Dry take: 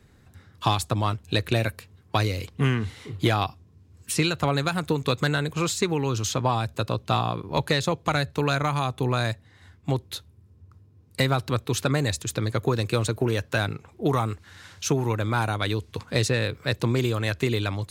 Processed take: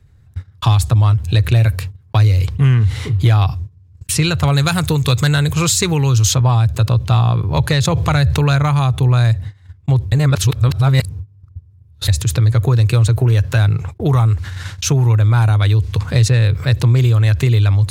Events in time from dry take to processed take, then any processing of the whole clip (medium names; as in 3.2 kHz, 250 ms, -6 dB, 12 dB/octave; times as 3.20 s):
4.43–6.35 s: treble shelf 3.6 kHz +9.5 dB
7.85–8.56 s: level flattener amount 50%
10.12–12.08 s: reverse
whole clip: gate -45 dBFS, range -43 dB; resonant low shelf 160 Hz +12 dB, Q 1.5; level flattener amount 50%